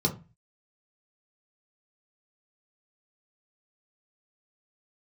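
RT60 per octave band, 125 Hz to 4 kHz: 0.50, 0.40, 0.30, 0.30, 0.30, 0.20 seconds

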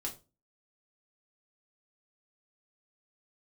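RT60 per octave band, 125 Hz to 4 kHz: 0.40, 0.40, 0.30, 0.25, 0.25, 0.25 seconds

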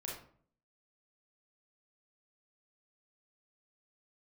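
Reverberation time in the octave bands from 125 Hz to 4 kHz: 0.70, 0.70, 0.55, 0.50, 0.40, 0.30 seconds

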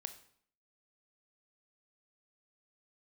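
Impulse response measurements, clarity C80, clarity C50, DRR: 15.5 dB, 12.5 dB, 9.0 dB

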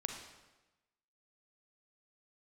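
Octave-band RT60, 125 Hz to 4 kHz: 1.1, 1.1, 1.1, 1.1, 1.0, 0.95 seconds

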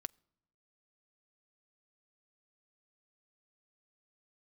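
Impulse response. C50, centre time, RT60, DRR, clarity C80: 31.5 dB, 1 ms, non-exponential decay, 18.5 dB, 32.5 dB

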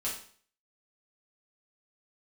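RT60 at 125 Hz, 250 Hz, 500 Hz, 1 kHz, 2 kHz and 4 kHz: 0.50, 0.50, 0.50, 0.50, 0.45, 0.50 seconds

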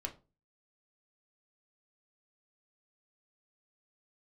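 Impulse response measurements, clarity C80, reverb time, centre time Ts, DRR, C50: 22.0 dB, 0.30 s, 9 ms, 3.0 dB, 15.5 dB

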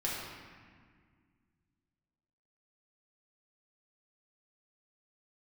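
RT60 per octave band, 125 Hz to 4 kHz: 2.8, 2.7, 1.9, 1.8, 1.8, 1.2 seconds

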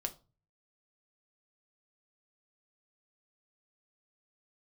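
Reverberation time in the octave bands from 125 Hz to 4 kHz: 0.70, 0.45, 0.35, 0.30, 0.25, 0.25 seconds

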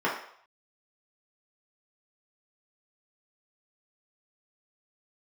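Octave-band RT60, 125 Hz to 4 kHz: 0.30, 0.40, 0.60, 0.65, 0.60, 0.60 seconds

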